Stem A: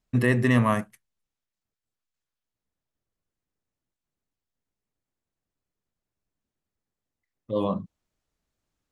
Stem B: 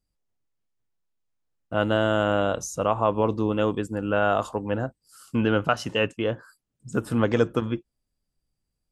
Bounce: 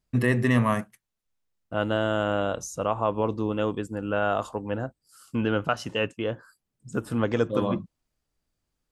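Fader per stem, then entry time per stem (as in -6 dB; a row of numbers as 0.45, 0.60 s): -1.0, -3.0 dB; 0.00, 0.00 s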